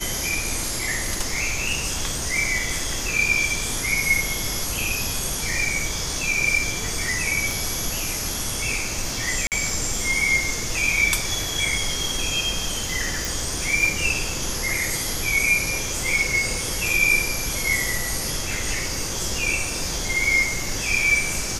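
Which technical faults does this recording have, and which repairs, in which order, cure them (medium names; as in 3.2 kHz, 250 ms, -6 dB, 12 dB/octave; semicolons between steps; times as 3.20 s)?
7.51 s: pop
9.47–9.52 s: dropout 48 ms
13.25 s: pop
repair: de-click; interpolate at 9.47 s, 48 ms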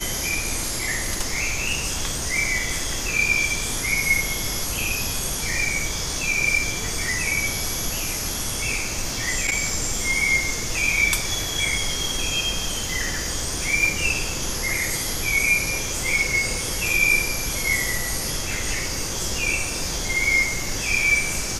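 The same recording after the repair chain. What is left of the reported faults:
nothing left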